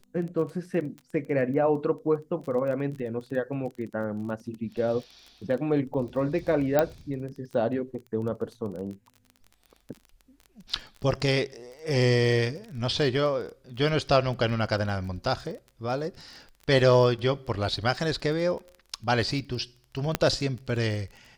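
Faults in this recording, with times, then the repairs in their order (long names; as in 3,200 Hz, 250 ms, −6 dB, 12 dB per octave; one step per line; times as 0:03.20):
surface crackle 24 per second −36 dBFS
0:06.79: click −9 dBFS
0:20.15: click −8 dBFS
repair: click removal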